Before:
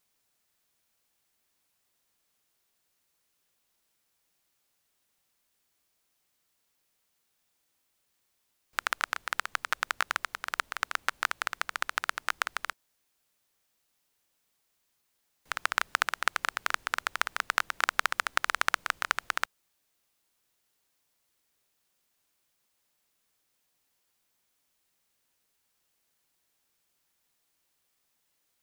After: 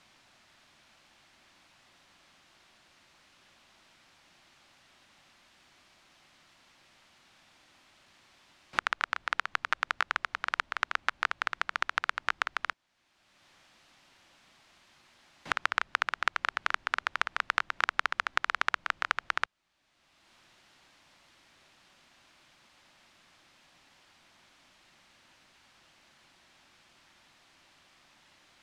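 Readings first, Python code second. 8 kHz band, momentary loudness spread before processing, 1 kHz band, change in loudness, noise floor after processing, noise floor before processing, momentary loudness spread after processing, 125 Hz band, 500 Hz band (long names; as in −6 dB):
−9.5 dB, 5 LU, 0.0 dB, −0.5 dB, −66 dBFS, −76 dBFS, 3 LU, can't be measured, −1.5 dB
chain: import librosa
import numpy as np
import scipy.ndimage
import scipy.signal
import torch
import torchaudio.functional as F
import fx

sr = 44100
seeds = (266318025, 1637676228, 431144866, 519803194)

y = scipy.signal.sosfilt(scipy.signal.butter(2, 3800.0, 'lowpass', fs=sr, output='sos'), x)
y = fx.peak_eq(y, sr, hz=450.0, db=-12.0, octaves=0.24)
y = fx.band_squash(y, sr, depth_pct=70)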